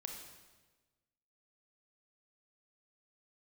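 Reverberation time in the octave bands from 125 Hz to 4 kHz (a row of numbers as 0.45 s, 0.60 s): 1.5 s, 1.4 s, 1.4 s, 1.2 s, 1.2 s, 1.1 s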